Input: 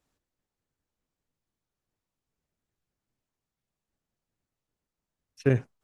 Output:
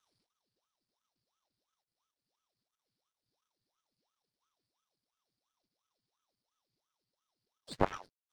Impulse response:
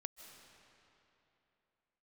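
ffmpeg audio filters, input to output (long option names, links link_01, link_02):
-filter_complex "[0:a]acrossover=split=100|950[link_01][link_02][link_03];[link_01]asoftclip=type=hard:threshold=-40dB[link_04];[link_02]aeval=exprs='0.299*(cos(1*acos(clip(val(0)/0.299,-1,1)))-cos(1*PI/2))+0.0841*(cos(7*acos(clip(val(0)/0.299,-1,1)))-cos(7*PI/2))':channel_layout=same[link_05];[link_03]alimiter=level_in=7dB:limit=-24dB:level=0:latency=1:release=66,volume=-7dB[link_06];[link_04][link_05][link_06]amix=inputs=3:normalize=0,asetrate=30870,aresample=44100,lowpass=frequency=4700:width_type=q:width=7.3,aeval=exprs='max(val(0),0)':channel_layout=same,aeval=exprs='val(0)*sin(2*PI*710*n/s+710*0.85/2.9*sin(2*PI*2.9*n/s))':channel_layout=same"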